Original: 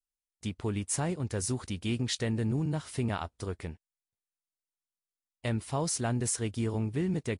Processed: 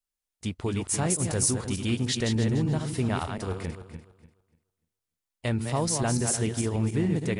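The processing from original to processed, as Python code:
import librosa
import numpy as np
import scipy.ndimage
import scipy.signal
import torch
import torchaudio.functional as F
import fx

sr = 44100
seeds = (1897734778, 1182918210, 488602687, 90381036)

y = fx.reverse_delay_fb(x, sr, ms=147, feedback_pct=47, wet_db=-6.0)
y = fx.high_shelf(y, sr, hz=6000.0, db=9.5, at=(1.1, 1.51))
y = F.gain(torch.from_numpy(y), 3.5).numpy()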